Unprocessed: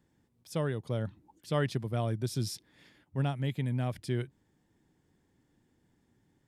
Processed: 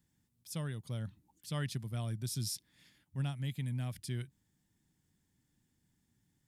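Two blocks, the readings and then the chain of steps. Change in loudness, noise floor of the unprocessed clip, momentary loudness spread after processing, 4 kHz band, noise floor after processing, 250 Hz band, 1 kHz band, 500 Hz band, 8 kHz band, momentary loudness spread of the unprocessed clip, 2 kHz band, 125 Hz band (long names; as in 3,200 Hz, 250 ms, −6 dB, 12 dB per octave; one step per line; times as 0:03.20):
−5.5 dB, −73 dBFS, 9 LU, −1.5 dB, −78 dBFS, −7.0 dB, −10.5 dB, −14.0 dB, +2.5 dB, 9 LU, −6.5 dB, −4.5 dB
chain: drawn EQ curve 190 Hz 0 dB, 430 Hz −11 dB, 11,000 Hz +9 dB
level −4.5 dB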